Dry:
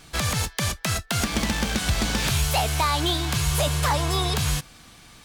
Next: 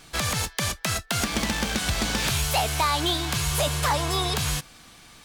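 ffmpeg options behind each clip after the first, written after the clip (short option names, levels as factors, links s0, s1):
-af "equalizer=f=68:w=0.37:g=-4.5"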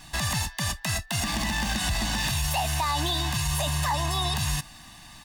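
-af "aecho=1:1:1.1:0.86,alimiter=limit=0.126:level=0:latency=1:release=45"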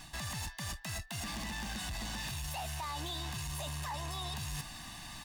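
-af "areverse,acompressor=threshold=0.0178:ratio=6,areverse,asoftclip=type=tanh:threshold=0.0168,volume=1.12"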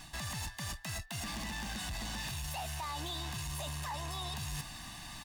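-af "aecho=1:1:268|536:0.0891|0.0285"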